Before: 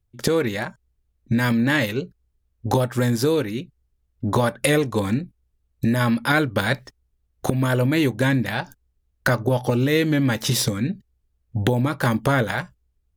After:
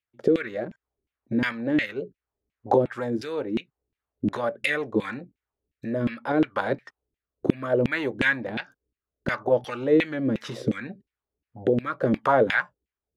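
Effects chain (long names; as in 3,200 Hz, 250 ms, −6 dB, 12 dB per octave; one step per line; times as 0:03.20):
auto-filter band-pass saw down 2.8 Hz 260–2,700 Hz
rotating-speaker cabinet horn 0.7 Hz
level +8 dB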